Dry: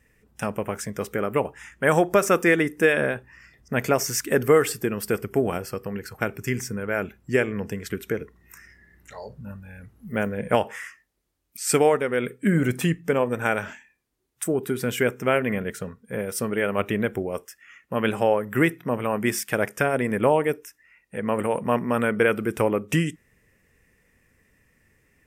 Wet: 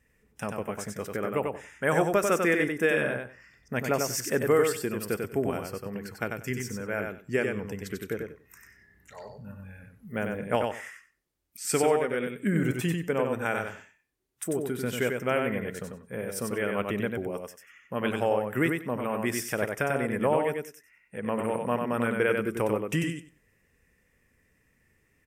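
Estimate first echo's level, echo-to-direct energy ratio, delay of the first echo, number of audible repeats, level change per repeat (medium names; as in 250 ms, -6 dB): -4.5 dB, -4.5 dB, 94 ms, 2, -15.5 dB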